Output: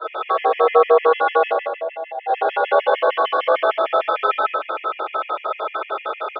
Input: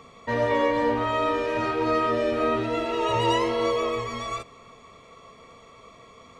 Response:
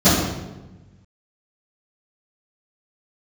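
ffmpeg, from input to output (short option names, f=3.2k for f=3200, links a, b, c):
-filter_complex "[0:a]acompressor=threshold=-38dB:ratio=2.5,asplit=2[a][b];[b]highpass=f=720:p=1,volume=21dB,asoftclip=type=tanh:threshold=-24.5dB[c];[a][c]amix=inputs=2:normalize=0,lowpass=f=1.3k:p=1,volume=-6dB,asettb=1/sr,asplit=3[d][e][f];[d]atrim=end=1.494[g];[e]atrim=start=1.49:end=2.27,asetpts=PTS-STARTPTS,afade=t=in:d=0.004:c=qsin,afade=t=out:st=0.776:d=0.004:c=qsin,asplit=3[h][i][j];[h]bandpass=f=530:t=q:w=8,volume=0dB[k];[i]bandpass=f=1.84k:t=q:w=8,volume=-6dB[l];[j]bandpass=f=2.48k:t=q:w=8,volume=-9dB[m];[k][l][m]amix=inputs=3:normalize=0[n];[f]atrim=start=2.266[o];[g][n]acrossfade=d=0.004:c1=hsin:c2=qsin[p];[p][o]acrossfade=d=0.004:c1=qsin:c2=hsin,highpass=f=180:t=q:w=0.5412,highpass=f=180:t=q:w=1.307,lowpass=f=3.3k:t=q:w=0.5176,lowpass=f=3.3k:t=q:w=0.7071,lowpass=f=3.3k:t=q:w=1.932,afreqshift=180,aecho=1:1:90.38|177.8:0.282|0.282[q];[1:a]atrim=start_sample=2205,asetrate=33957,aresample=44100[r];[q][r]afir=irnorm=-1:irlink=0,afftfilt=real='re*gt(sin(2*PI*6.6*pts/sr)*(1-2*mod(floor(b*sr/1024/1700),2)),0)':imag='im*gt(sin(2*PI*6.6*pts/sr)*(1-2*mod(floor(b*sr/1024/1700),2)),0)':win_size=1024:overlap=0.75,volume=-9dB"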